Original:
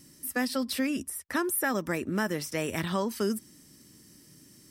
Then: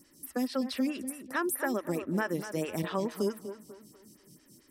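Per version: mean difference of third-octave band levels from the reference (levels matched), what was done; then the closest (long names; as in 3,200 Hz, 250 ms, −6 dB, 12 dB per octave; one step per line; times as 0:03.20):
5.5 dB: on a send: tape delay 247 ms, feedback 40%, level −9 dB, low-pass 2,200 Hz
on the sum: phaser with staggered stages 4.6 Hz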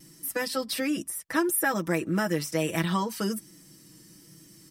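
1.5 dB: comb filter 6.1 ms, depth 87%
pitch vibrato 1.2 Hz 21 cents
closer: second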